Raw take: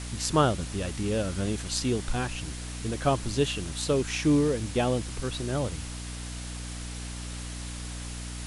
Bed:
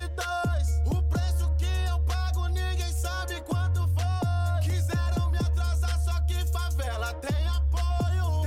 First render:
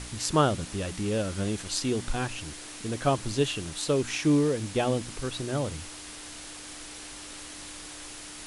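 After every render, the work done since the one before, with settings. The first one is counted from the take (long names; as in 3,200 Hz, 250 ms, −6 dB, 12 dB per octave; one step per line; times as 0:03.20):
hum removal 60 Hz, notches 4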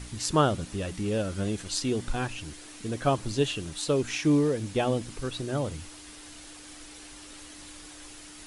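broadband denoise 6 dB, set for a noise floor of −43 dBFS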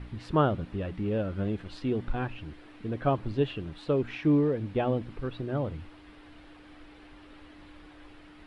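high-frequency loss of the air 450 metres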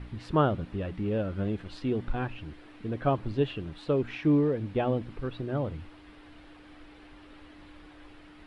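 no processing that can be heard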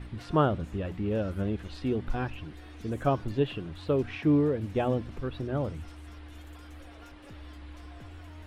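mix in bed −21.5 dB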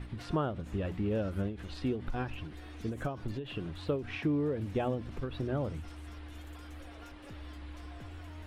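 downward compressor 4 to 1, threshold −28 dBFS, peak gain reduction 9 dB
every ending faded ahead of time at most 120 dB per second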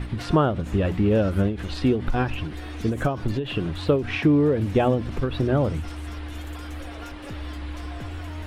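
level +12 dB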